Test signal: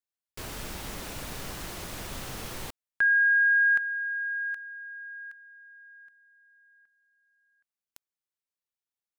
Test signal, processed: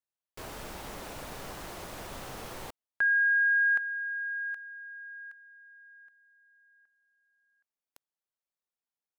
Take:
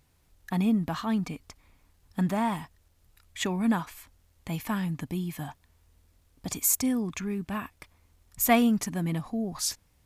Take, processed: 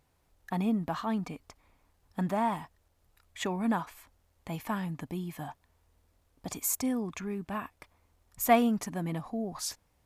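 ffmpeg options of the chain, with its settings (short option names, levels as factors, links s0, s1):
-af "equalizer=f=710:t=o:w=2.3:g=7.5,volume=0.473"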